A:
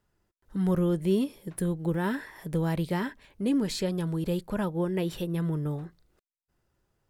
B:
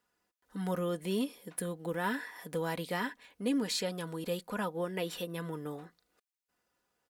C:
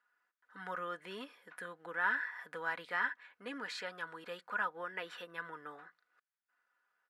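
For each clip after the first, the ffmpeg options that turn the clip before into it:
-af "highpass=f=620:p=1,aecho=1:1:4.1:0.48"
-af "bandpass=f=1.5k:t=q:w=3:csg=0,volume=7.5dB"

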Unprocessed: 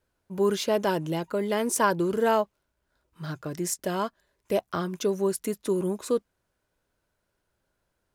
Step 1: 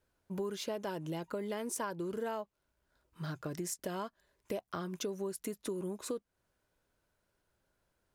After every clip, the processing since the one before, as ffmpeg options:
-af "acompressor=threshold=-34dB:ratio=5,volume=-2dB"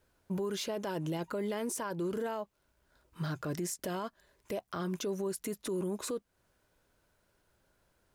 -af "alimiter=level_in=10.5dB:limit=-24dB:level=0:latency=1:release=18,volume=-10.5dB,volume=6.5dB"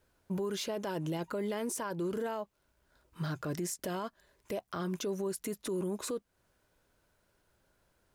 -af anull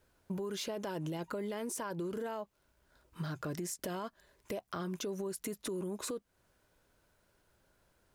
-af "acompressor=threshold=-36dB:ratio=6,volume=1dB"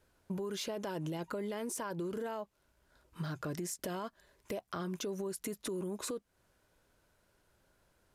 -af "aresample=32000,aresample=44100"

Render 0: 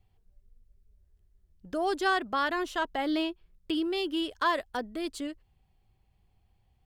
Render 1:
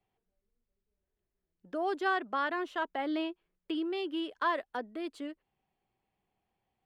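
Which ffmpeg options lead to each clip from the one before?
-filter_complex "[0:a]acrossover=split=190 3200:gain=0.0794 1 0.224[a][b][c];[a][b][c]amix=inputs=3:normalize=0,volume=-3dB"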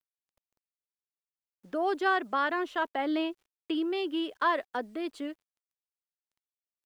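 -af "acrusher=bits=11:mix=0:aa=0.000001,volume=3.5dB"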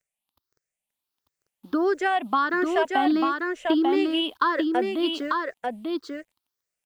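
-af "afftfilt=real='re*pow(10,15/40*sin(2*PI*(0.53*log(max(b,1)*sr/1024/100)/log(2)-(1.5)*(pts-256)/sr)))':imag='im*pow(10,15/40*sin(2*PI*(0.53*log(max(b,1)*sr/1024/100)/log(2)-(1.5)*(pts-256)/sr)))':win_size=1024:overlap=0.75,acompressor=threshold=-25dB:ratio=6,aecho=1:1:893:0.668,volume=6dB"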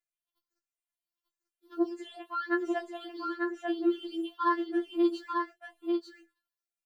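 -filter_complex "[0:a]flanger=delay=8.2:depth=5.5:regen=82:speed=0.37:shape=sinusoidal,asplit=2[a][b];[b]adelay=21,volume=-9.5dB[c];[a][c]amix=inputs=2:normalize=0,afftfilt=real='re*4*eq(mod(b,16),0)':imag='im*4*eq(mod(b,16),0)':win_size=2048:overlap=0.75,volume=-4.5dB"

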